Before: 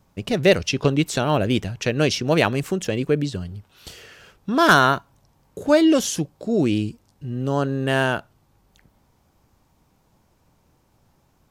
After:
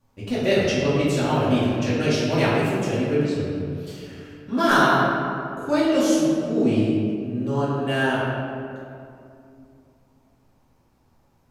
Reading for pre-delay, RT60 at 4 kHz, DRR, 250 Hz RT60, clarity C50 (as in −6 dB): 3 ms, 1.3 s, −10.5 dB, 3.2 s, −2.0 dB